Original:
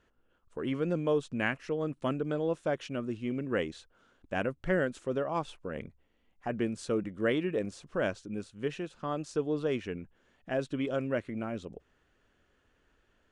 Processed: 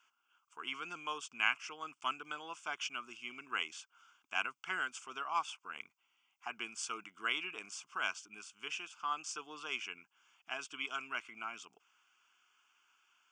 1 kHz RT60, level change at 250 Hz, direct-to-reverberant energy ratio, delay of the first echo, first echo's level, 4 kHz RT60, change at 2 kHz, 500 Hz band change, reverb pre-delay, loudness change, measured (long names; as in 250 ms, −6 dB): no reverb audible, −23.0 dB, no reverb audible, no echo audible, no echo audible, no reverb audible, +0.5 dB, −22.0 dB, no reverb audible, −6.5 dB